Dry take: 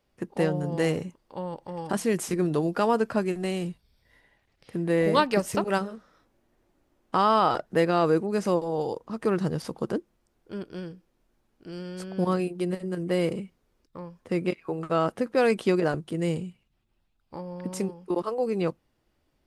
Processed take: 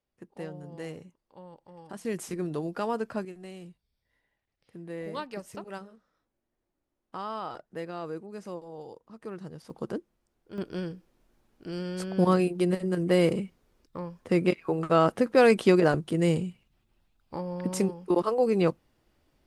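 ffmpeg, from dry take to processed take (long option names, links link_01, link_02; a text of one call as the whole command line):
ffmpeg -i in.wav -af "asetnsamples=nb_out_samples=441:pad=0,asendcmd='2.05 volume volume -7dB;3.25 volume volume -14.5dB;9.7 volume volume -5dB;10.58 volume volume 3dB',volume=-14dB" out.wav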